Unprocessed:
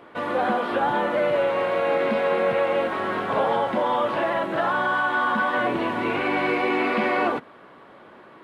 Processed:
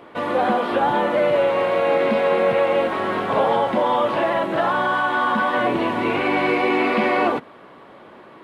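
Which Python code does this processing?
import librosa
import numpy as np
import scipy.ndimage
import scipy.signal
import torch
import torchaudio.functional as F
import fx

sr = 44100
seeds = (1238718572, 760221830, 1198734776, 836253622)

y = fx.peak_eq(x, sr, hz=1500.0, db=-3.5, octaves=0.57)
y = y * librosa.db_to_amplitude(4.0)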